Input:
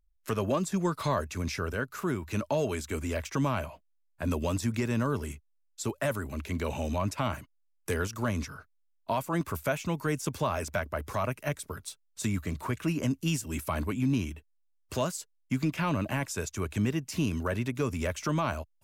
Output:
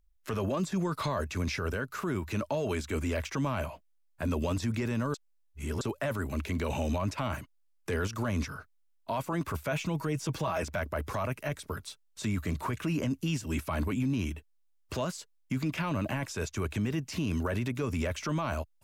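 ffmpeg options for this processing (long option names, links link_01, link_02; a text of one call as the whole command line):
ffmpeg -i in.wav -filter_complex "[0:a]asettb=1/sr,asplit=3[link_01][link_02][link_03];[link_01]atrim=end=9.714[link_04];[link_02]atrim=start=9.71:end=10.63,asetpts=PTS-STARTPTS,afade=type=in:duration=0.004:curve=qsin,afade=type=out:start_time=0.916:duration=0.004:curve=qsin,aecho=1:1:6.2:0.65,atrim=end_sample=40572[link_05];[link_03]atrim=start=10.626[link_06];[link_04][link_05]acrossfade=duration=0.004:curve1=hsin:curve2=qsin[link_07];[link_07][link_06]acrossfade=duration=0.004:curve1=qsin:curve2=hsin,asplit=3[link_08][link_09][link_10];[link_08]atrim=end=5.142[link_11];[link_09]atrim=start=5.138:end=5.812,asetpts=PTS-STARTPTS,areverse[link_12];[link_10]atrim=start=5.808[link_13];[link_11][link_12]acrossfade=duration=0.004:curve1=hsin:curve2=hsin[link_14];[link_14][link_13]acrossfade=duration=0.004:curve1=hsin:curve2=hsin,acrossover=split=5300[link_15][link_16];[link_16]acompressor=threshold=-51dB:ratio=4:attack=1:release=60[link_17];[link_15][link_17]amix=inputs=2:normalize=0,alimiter=level_in=2dB:limit=-24dB:level=0:latency=1:release=10,volume=-2dB,volume=3dB" out.wav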